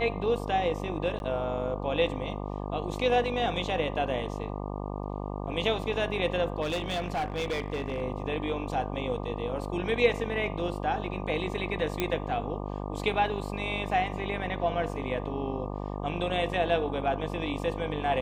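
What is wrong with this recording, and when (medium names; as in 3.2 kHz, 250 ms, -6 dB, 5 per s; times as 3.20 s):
buzz 50 Hz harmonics 24 -35 dBFS
1.19–1.20 s: dropout 11 ms
6.61–8.03 s: clipped -26.5 dBFS
12.00 s: pop -12 dBFS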